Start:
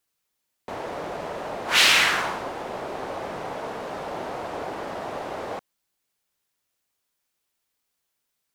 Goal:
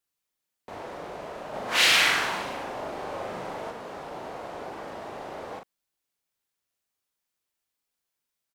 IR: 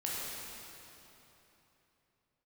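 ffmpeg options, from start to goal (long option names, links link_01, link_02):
-filter_complex "[0:a]asplit=2[link_01][link_02];[link_02]adelay=40,volume=-5dB[link_03];[link_01][link_03]amix=inputs=2:normalize=0,asplit=3[link_04][link_05][link_06];[link_04]afade=type=out:start_time=1.53:duration=0.02[link_07];[link_05]aecho=1:1:40|100|190|325|527.5:0.631|0.398|0.251|0.158|0.1,afade=type=in:start_time=1.53:duration=0.02,afade=type=out:start_time=3.7:duration=0.02[link_08];[link_06]afade=type=in:start_time=3.7:duration=0.02[link_09];[link_07][link_08][link_09]amix=inputs=3:normalize=0,volume=-7dB"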